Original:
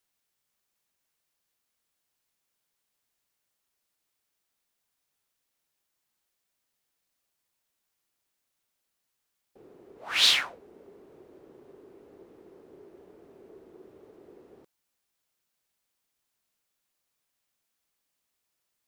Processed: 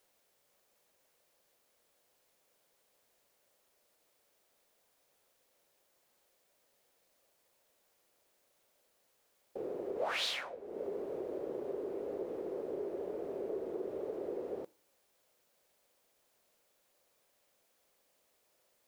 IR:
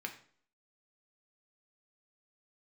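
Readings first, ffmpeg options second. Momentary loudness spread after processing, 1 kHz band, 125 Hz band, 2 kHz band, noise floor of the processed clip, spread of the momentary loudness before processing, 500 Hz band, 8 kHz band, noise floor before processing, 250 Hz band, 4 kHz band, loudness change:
8 LU, -2.0 dB, no reading, -10.5 dB, -75 dBFS, 14 LU, +13.0 dB, -15.5 dB, -81 dBFS, +9.5 dB, -15.0 dB, -16.5 dB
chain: -filter_complex "[0:a]acompressor=threshold=0.00398:ratio=3,equalizer=f=540:w=1.3:g=13.5,asplit=2[s0][s1];[1:a]atrim=start_sample=2205[s2];[s1][s2]afir=irnorm=-1:irlink=0,volume=0.188[s3];[s0][s3]amix=inputs=2:normalize=0,volume=1.68"

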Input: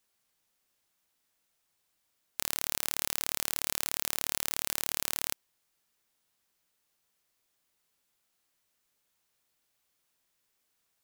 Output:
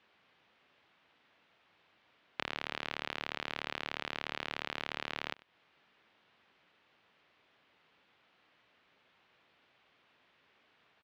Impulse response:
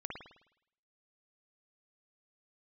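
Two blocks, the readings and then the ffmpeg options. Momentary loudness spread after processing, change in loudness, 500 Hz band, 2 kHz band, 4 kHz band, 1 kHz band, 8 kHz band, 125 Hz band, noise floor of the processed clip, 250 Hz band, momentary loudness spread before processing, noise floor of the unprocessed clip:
3 LU, -8.0 dB, +2.0 dB, +2.0 dB, -4.0 dB, +2.0 dB, -27.0 dB, -1.5 dB, -71 dBFS, +1.0 dB, 4 LU, -78 dBFS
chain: -af "highpass=53,acompressor=threshold=0.0126:ratio=8,lowpass=f=3200:w=0.5412,lowpass=f=3200:w=1.3066,lowshelf=f=85:g=-11,aecho=1:1:96:0.0841,volume=5.96"

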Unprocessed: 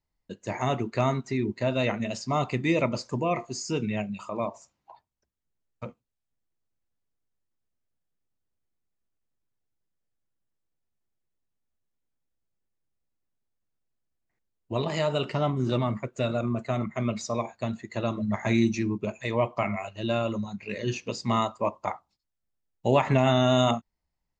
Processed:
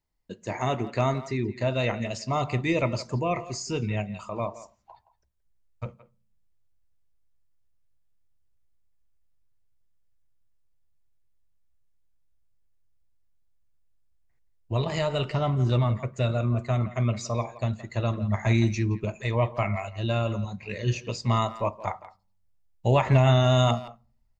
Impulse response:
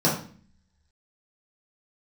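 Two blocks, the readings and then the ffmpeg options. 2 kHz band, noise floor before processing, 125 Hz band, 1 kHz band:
0.0 dB, -83 dBFS, +6.0 dB, 0.0 dB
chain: -filter_complex "[0:a]asubboost=boost=6:cutoff=96,asplit=2[s0][s1];[s1]adelay=170,highpass=300,lowpass=3400,asoftclip=type=hard:threshold=0.112,volume=0.178[s2];[s0][s2]amix=inputs=2:normalize=0,asplit=2[s3][s4];[1:a]atrim=start_sample=2205[s5];[s4][s5]afir=irnorm=-1:irlink=0,volume=0.015[s6];[s3][s6]amix=inputs=2:normalize=0"

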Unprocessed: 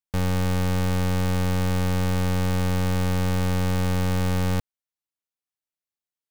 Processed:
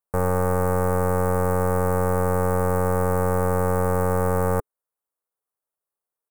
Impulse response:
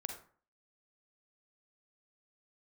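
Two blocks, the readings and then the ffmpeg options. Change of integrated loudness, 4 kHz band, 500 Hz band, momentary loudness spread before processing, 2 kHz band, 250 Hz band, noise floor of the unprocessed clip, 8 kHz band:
+2.0 dB, under -15 dB, +9.5 dB, 0 LU, +0.5 dB, -1.5 dB, under -85 dBFS, +0.5 dB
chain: -af "firequalizer=gain_entry='entry(290,0);entry(420,12);entry(770,9);entry(1200,10);entry(3200,-24);entry(8700,6)':delay=0.05:min_phase=1,volume=0.841"

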